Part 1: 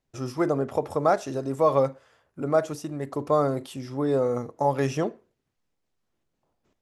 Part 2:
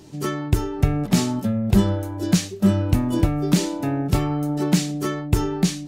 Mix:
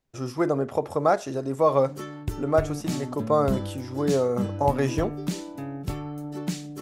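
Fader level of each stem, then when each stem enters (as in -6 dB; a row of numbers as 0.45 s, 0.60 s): +0.5 dB, -11.0 dB; 0.00 s, 1.75 s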